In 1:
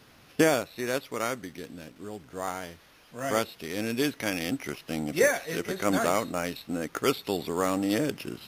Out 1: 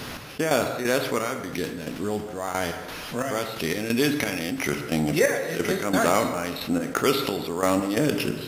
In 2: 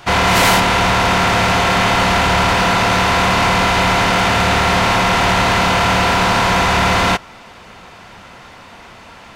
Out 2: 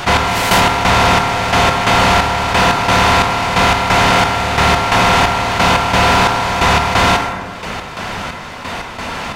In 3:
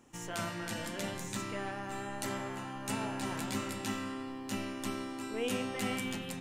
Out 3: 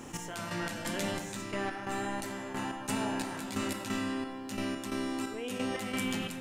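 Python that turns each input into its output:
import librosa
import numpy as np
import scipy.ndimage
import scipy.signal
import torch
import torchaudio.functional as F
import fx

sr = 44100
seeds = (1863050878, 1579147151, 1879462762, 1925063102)

y = fx.step_gate(x, sr, bpm=177, pattern='xx....xx..xx', floor_db=-12.0, edge_ms=4.5)
y = fx.rev_plate(y, sr, seeds[0], rt60_s=0.84, hf_ratio=0.65, predelay_ms=0, drr_db=9.0)
y = fx.env_flatten(y, sr, amount_pct=50)
y = y * librosa.db_to_amplitude(1.5)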